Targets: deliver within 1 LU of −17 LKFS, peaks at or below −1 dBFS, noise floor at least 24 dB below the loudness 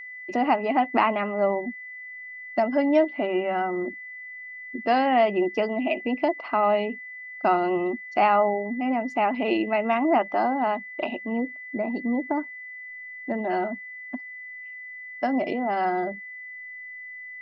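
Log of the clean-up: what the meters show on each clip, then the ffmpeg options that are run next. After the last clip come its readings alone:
interfering tone 2,000 Hz; level of the tone −37 dBFS; integrated loudness −25.0 LKFS; sample peak −7.0 dBFS; target loudness −17.0 LKFS
→ -af "bandreject=frequency=2000:width=30"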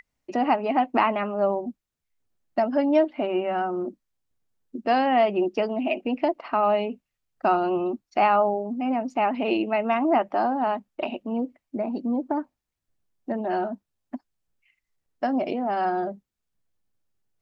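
interfering tone none found; integrated loudness −25.0 LKFS; sample peak −7.5 dBFS; target loudness −17.0 LKFS
→ -af "volume=8dB,alimiter=limit=-1dB:level=0:latency=1"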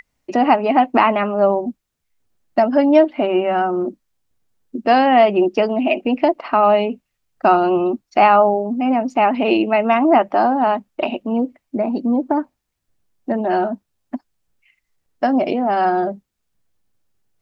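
integrated loudness −17.0 LKFS; sample peak −1.0 dBFS; background noise floor −76 dBFS

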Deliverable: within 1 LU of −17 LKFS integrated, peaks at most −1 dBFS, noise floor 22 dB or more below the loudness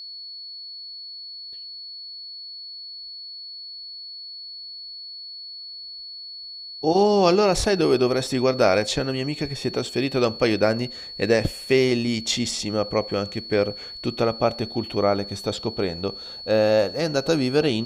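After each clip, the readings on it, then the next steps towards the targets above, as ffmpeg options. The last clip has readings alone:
interfering tone 4,400 Hz; level of the tone −35 dBFS; integrated loudness −22.5 LKFS; sample peak −4.5 dBFS; target loudness −17.0 LKFS
→ -af "bandreject=frequency=4400:width=30"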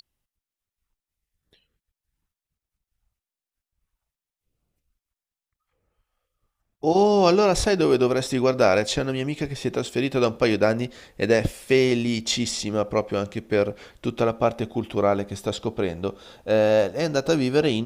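interfering tone none found; integrated loudness −22.5 LKFS; sample peak −4.5 dBFS; target loudness −17.0 LKFS
→ -af "volume=5.5dB,alimiter=limit=-1dB:level=0:latency=1"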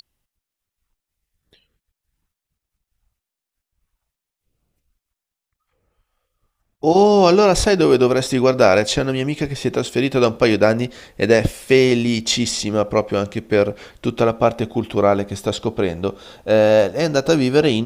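integrated loudness −17.5 LKFS; sample peak −1.0 dBFS; background noise floor −86 dBFS

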